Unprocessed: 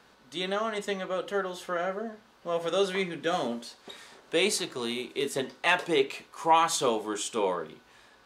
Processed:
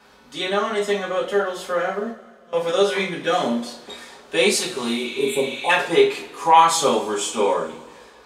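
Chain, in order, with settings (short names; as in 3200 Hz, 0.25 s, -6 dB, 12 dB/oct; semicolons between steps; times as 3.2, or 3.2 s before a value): 2.1–2.53 passive tone stack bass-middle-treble 6-0-2; 5.06–5.67 spectral repair 1100–7200 Hz before; reverb, pre-delay 3 ms, DRR -6.5 dB; gain +1 dB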